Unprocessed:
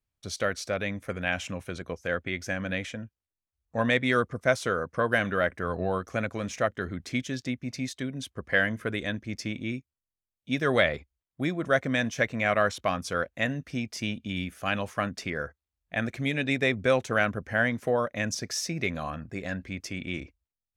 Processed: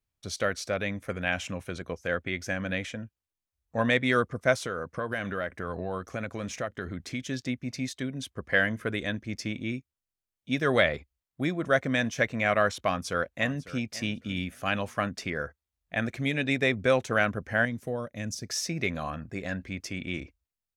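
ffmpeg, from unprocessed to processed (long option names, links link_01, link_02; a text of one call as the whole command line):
ffmpeg -i in.wav -filter_complex "[0:a]asettb=1/sr,asplit=3[link_01][link_02][link_03];[link_01]atrim=end=4.574[link_04];[link_02]atrim=start=4.57:end=7.25,asetpts=PTS-STARTPTS,afade=type=in:duration=0.004:curve=qsin,afade=type=out:start_time=2.676:duration=0.004:curve=qsin,acompressor=threshold=-30dB:ratio=2.5:attack=3.2:release=140:knee=1:detection=peak[link_05];[link_03]atrim=start=7.246[link_06];[link_04][link_05]acrossfade=duration=0.004:curve1=hsin:curve2=qsin[link_07];[link_07][link_06]acrossfade=duration=0.004:curve1=qsin:curve2=hsin,asplit=2[link_08][link_09];[link_09]afade=type=in:start_time=12.81:duration=0.01,afade=type=out:start_time=13.91:duration=0.01,aecho=0:1:550|1100:0.141254|0.0211881[link_10];[link_08][link_10]amix=inputs=2:normalize=0,asettb=1/sr,asplit=3[link_11][link_12][link_13];[link_11]atrim=end=17.654[link_14];[link_12]atrim=start=17.65:end=18.5,asetpts=PTS-STARTPTS,afade=type=in:duration=0.004:curve=qsin,afade=type=out:start_time=0.846:duration=0.004:curve=qsin,equalizer=frequency=1300:width=0.32:gain=-11.5[link_15];[link_13]atrim=start=18.496[link_16];[link_14][link_15]acrossfade=duration=0.004:curve1=hsin:curve2=qsin[link_17];[link_17][link_16]acrossfade=duration=0.004:curve1=qsin:curve2=hsin" out.wav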